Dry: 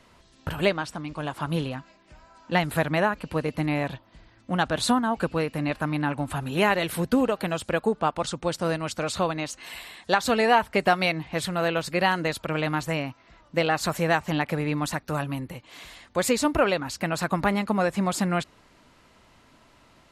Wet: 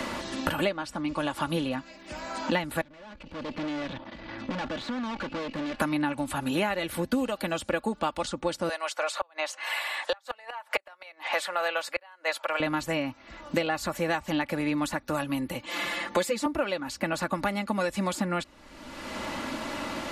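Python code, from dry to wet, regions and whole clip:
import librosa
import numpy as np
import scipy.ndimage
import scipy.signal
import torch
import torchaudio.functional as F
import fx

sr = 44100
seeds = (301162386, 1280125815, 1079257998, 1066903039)

y = fx.chain(x, sr, fx.level_steps(step_db=15),
    fx.tube_stage(drive_db=48.0, bias=0.7),
    fx.air_absorb(metres=170.0), at=(2.81, 5.8))
y = fx.chain(y, sr, fx.highpass(hz=600.0, slope=24),
    fx.gate_flip(shuts_db=-16.0, range_db=-34), at=(8.69, 12.6))
y = fx.chain(y, sr, fx.highpass(hz=160.0, slope=12),
    fx.comb(ms=5.8, depth=1.0), at=(15.66, 16.46))
y = y + 0.54 * np.pad(y, (int(3.5 * sr / 1000.0), 0))[:len(y)]
y = fx.band_squash(y, sr, depth_pct=100)
y = F.gain(torch.from_numpy(y), -3.5).numpy()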